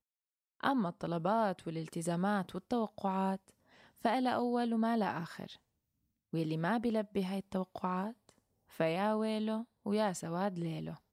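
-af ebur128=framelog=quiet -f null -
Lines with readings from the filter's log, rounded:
Integrated loudness:
  I:         -35.3 LUFS
  Threshold: -45.7 LUFS
Loudness range:
  LRA:         2.7 LU
  Threshold: -56.1 LUFS
  LRA low:   -37.8 LUFS
  LRA high:  -35.0 LUFS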